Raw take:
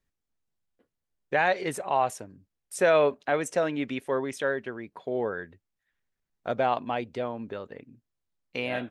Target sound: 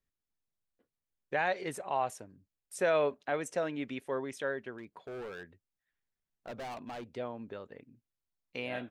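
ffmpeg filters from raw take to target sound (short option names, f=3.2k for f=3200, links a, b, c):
-filter_complex "[0:a]asettb=1/sr,asplit=3[a][b][c];[a]atrim=end=4.784[d];[b]atrim=start=4.78:end=7.13,asetpts=PTS-STARTPTS,afade=t=in:d=0.004:c=qsin,afade=t=out:st=2.346:d=0.004:c=qsin,volume=32dB,asoftclip=hard,volume=-32dB[e];[c]atrim=start=7.126[f];[d][e]acrossfade=d=0.004:c1=hsin:c2=qsin[g];[g][f]acrossfade=d=0.004:c1=qsin:c2=hsin,volume=-7dB"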